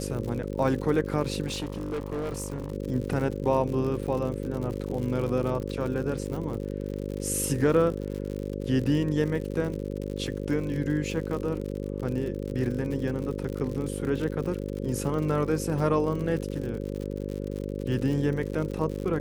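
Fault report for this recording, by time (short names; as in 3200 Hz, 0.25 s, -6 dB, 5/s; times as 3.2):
buzz 50 Hz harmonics 11 -33 dBFS
crackle 85/s -33 dBFS
1.46–2.72 clipped -27.5 dBFS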